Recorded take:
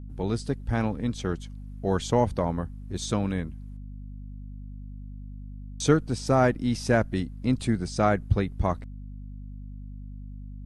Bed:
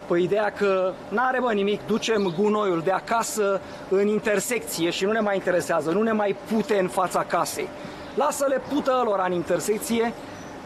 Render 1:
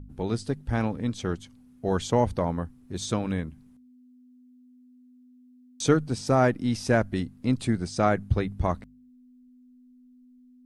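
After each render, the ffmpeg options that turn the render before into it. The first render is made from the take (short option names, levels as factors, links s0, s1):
-af "bandreject=f=50:t=h:w=4,bandreject=f=100:t=h:w=4,bandreject=f=150:t=h:w=4,bandreject=f=200:t=h:w=4"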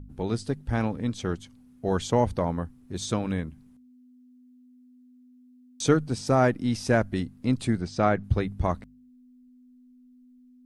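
-filter_complex "[0:a]asettb=1/sr,asplit=3[s0][s1][s2];[s0]atrim=end=7.814[s3];[s1]atrim=start=7.81:end=8.24,asetpts=PTS-STARTPTS,afade=t=in:d=0.004:c=qsin,afade=t=out:st=0.426:d=0.004:c=qsin,lowpass=4900[s4];[s2]atrim=start=8.236[s5];[s3][s4]acrossfade=d=0.004:c1=hsin:c2=qsin[s6];[s6][s5]acrossfade=d=0.004:c1=qsin:c2=hsin"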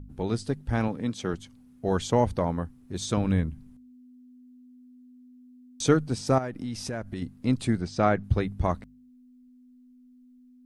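-filter_complex "[0:a]asettb=1/sr,asplit=3[s0][s1][s2];[s0]atrim=end=0.884[s3];[s1]atrim=start=0.88:end=1.34,asetpts=PTS-STARTPTS,afade=t=in:d=0.004:c=qsin,afade=t=out:st=0.456:d=0.004:c=qsin,highpass=130[s4];[s2]atrim=start=1.336[s5];[s3][s4]acrossfade=d=0.004:c1=hsin:c2=qsin[s6];[s6][s5]acrossfade=d=0.004:c1=qsin:c2=hsin,asettb=1/sr,asplit=3[s7][s8][s9];[s7]atrim=end=3.174[s10];[s8]atrim=start=3.17:end=5.83,asetpts=PTS-STARTPTS,afade=t=in:d=0.004:c=qsin,afade=t=out:st=2.656:d=0.004:c=qsin,lowshelf=f=140:g=11.5[s11];[s9]atrim=start=5.826[s12];[s10][s11]acrossfade=d=0.004:c1=hsin:c2=qsin[s13];[s13][s12]acrossfade=d=0.004:c1=qsin:c2=hsin,asettb=1/sr,asplit=3[s14][s15][s16];[s14]atrim=end=6.384[s17];[s15]atrim=start=6.38:end=7.22,asetpts=PTS-STARTPTS,afade=t=in:d=0.004:c=qsin,afade=t=out:st=0.836:d=0.004:c=qsin,acompressor=threshold=0.0316:ratio=5:attack=3.2:release=140:knee=1:detection=peak[s18];[s16]atrim=start=7.216[s19];[s17][s18]acrossfade=d=0.004:c1=hsin:c2=qsin[s20];[s20][s19]acrossfade=d=0.004:c1=qsin:c2=hsin"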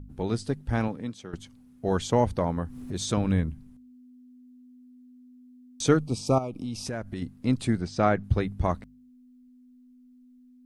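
-filter_complex "[0:a]asettb=1/sr,asplit=3[s0][s1][s2];[s0]atrim=end=2.574[s3];[s1]atrim=start=2.57:end=3.52,asetpts=PTS-STARTPTS,afade=t=in:d=0.004:c=qsin,afade=t=out:st=0.946:d=0.004:c=qsin,acompressor=mode=upward:threshold=0.0501:ratio=2.5:attack=3.2:release=140:knee=2.83:detection=peak[s4];[s2]atrim=start=3.516[s5];[s3][s4]acrossfade=d=0.004:c1=hsin:c2=qsin[s6];[s6][s5]acrossfade=d=0.004:c1=qsin:c2=hsin,asettb=1/sr,asplit=3[s7][s8][s9];[s7]atrim=end=5.994[s10];[s8]atrim=start=5.99:end=6.86,asetpts=PTS-STARTPTS,afade=t=in:d=0.004:c=qsin,afade=t=out:st=0.866:d=0.004:c=qsin,asuperstop=centerf=1700:order=12:qfactor=1.8[s11];[s9]atrim=start=6.856[s12];[s10][s11]acrossfade=d=0.004:c1=hsin:c2=qsin[s13];[s13][s12]acrossfade=d=0.004:c1=qsin:c2=hsin,asplit=2[s14][s15];[s14]atrim=end=1.33,asetpts=PTS-STARTPTS,afade=t=out:st=0.78:d=0.55:silence=0.177828[s16];[s15]atrim=start=1.33,asetpts=PTS-STARTPTS,afade=t=in:d=0.004:c=hsin:silence=0.177828[s17];[s16][s17]concat=n=2:v=0:a=1"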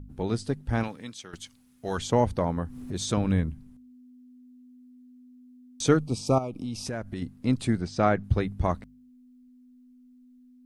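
-filter_complex "[0:a]asettb=1/sr,asplit=3[s0][s1][s2];[s0]atrim=end=0.834[s3];[s1]atrim=start=0.83:end=1.98,asetpts=PTS-STARTPTS,afade=t=in:d=0.004:c=qsin,afade=t=out:st=1.146:d=0.004:c=qsin,tiltshelf=f=1200:g=-7.5[s4];[s2]atrim=start=1.976[s5];[s3][s4]acrossfade=d=0.004:c1=hsin:c2=qsin[s6];[s6][s5]acrossfade=d=0.004:c1=qsin:c2=hsin"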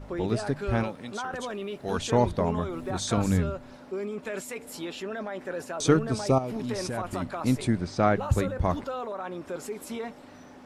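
-filter_complex "[1:a]volume=0.251[s0];[0:a][s0]amix=inputs=2:normalize=0"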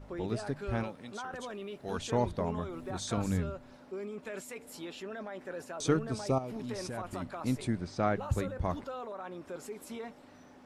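-af "volume=0.447"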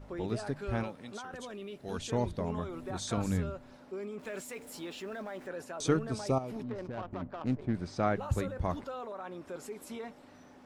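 -filter_complex "[0:a]asettb=1/sr,asplit=3[s0][s1][s2];[s0]atrim=end=1.184[s3];[s1]atrim=start=1.18:end=2.5,asetpts=PTS-STARTPTS,afade=t=in:d=0.004:c=qsin,afade=t=out:st=1.316:d=0.004:c=qsin,equalizer=f=1000:t=o:w=2:g=-4.5[s4];[s2]atrim=start=2.496[s5];[s3][s4]acrossfade=d=0.004:c1=hsin:c2=qsin[s6];[s6][s5]acrossfade=d=0.004:c1=qsin:c2=hsin,asettb=1/sr,asplit=3[s7][s8][s9];[s7]atrim=end=4.194[s10];[s8]atrim=start=4.19:end=5.48,asetpts=PTS-STARTPTS,afade=t=in:d=0.004:c=qsin,afade=t=out:st=1.286:d=0.004:c=qsin,aeval=exprs='val(0)+0.5*0.002*sgn(val(0))':c=same[s11];[s9]atrim=start=5.476[s12];[s10][s11]acrossfade=d=0.004:c1=hsin:c2=qsin[s13];[s13][s12]acrossfade=d=0.004:c1=qsin:c2=hsin,asplit=3[s14][s15][s16];[s14]afade=t=out:st=6.62:d=0.02[s17];[s15]adynamicsmooth=sensitivity=5.5:basefreq=580,afade=t=in:st=6.62:d=0.02,afade=t=out:st=7.73:d=0.02[s18];[s16]afade=t=in:st=7.73:d=0.02[s19];[s17][s18][s19]amix=inputs=3:normalize=0"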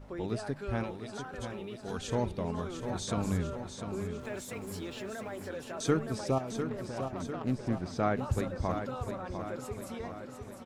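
-af "aecho=1:1:700|1400|2100|2800|3500|4200|4900:0.398|0.231|0.134|0.0777|0.0451|0.0261|0.0152"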